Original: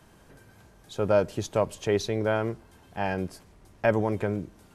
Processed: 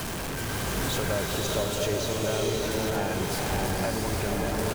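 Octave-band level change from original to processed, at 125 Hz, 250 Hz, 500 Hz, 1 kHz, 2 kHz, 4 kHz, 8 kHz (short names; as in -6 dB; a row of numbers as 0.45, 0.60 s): +2.5, +1.0, -2.0, +1.5, +3.5, +10.5, +12.5 dB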